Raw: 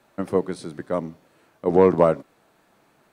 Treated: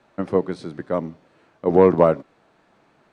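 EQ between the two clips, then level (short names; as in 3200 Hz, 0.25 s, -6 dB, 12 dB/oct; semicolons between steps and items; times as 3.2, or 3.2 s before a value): air absorption 93 m; +2.0 dB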